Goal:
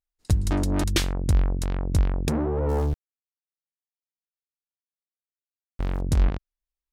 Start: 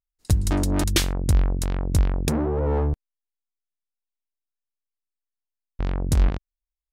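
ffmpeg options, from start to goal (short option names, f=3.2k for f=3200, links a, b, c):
-filter_complex "[0:a]highshelf=f=7.1k:g=-6.5,asettb=1/sr,asplit=3[a][b][c];[a]atrim=end=2.694[d];[b]atrim=start=2.69:end=6.01,asetpts=PTS-STARTPTS,afade=t=in:d=0.004:c=qsin,afade=t=out:st=3.316:d=0.004:c=qsin,aeval=exprs='val(0)*gte(abs(val(0)),0.0178)':c=same[e];[c]atrim=start=6.006[f];[d][e]acrossfade=d=0.004:c1=hsin:c2=qsin[g];[g][f]acrossfade=d=0.004:c1=qsin:c2=hsin,volume=-1.5dB"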